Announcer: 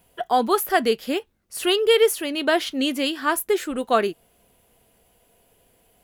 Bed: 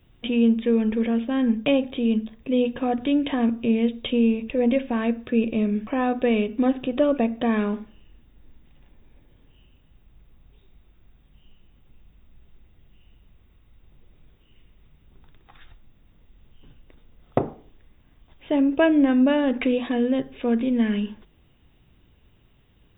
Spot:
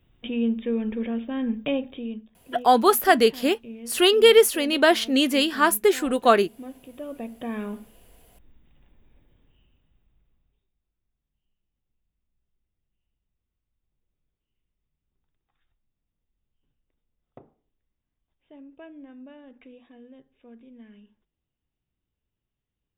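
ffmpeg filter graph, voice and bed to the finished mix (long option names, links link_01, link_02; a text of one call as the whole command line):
ffmpeg -i stem1.wav -i stem2.wav -filter_complex "[0:a]adelay=2350,volume=2.5dB[link_01];[1:a]volume=8dB,afade=type=out:start_time=1.78:duration=0.48:silence=0.223872,afade=type=in:start_time=6.96:duration=1.1:silence=0.211349,afade=type=out:start_time=9.15:duration=1.57:silence=0.0841395[link_02];[link_01][link_02]amix=inputs=2:normalize=0" out.wav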